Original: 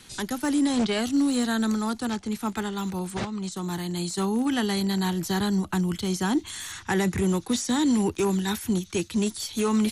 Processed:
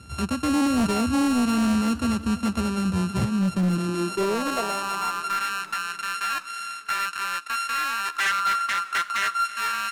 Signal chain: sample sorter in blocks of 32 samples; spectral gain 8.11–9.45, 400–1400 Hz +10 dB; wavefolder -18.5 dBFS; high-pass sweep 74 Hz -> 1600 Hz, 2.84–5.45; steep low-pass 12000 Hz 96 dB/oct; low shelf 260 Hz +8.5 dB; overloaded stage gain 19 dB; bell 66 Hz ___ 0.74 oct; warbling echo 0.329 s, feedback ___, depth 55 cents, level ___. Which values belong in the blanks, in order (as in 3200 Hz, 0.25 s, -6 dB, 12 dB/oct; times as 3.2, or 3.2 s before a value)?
+6 dB, 63%, -19.5 dB